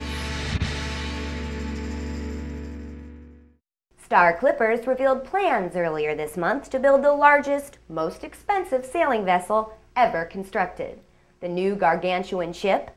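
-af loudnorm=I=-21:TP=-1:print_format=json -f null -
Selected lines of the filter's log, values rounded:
"input_i" : "-23.6",
"input_tp" : "-2.7",
"input_lra" : "8.8",
"input_thresh" : "-34.4",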